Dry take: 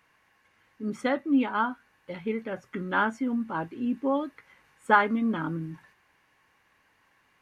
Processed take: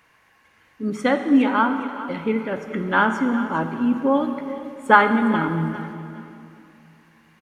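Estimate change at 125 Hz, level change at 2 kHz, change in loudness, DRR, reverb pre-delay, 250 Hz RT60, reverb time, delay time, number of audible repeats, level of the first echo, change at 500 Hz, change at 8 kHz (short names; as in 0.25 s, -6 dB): +9.0 dB, +7.5 dB, +7.0 dB, 7.0 dB, 35 ms, 2.9 s, 2.6 s, 0.409 s, 2, -15.0 dB, +7.5 dB, n/a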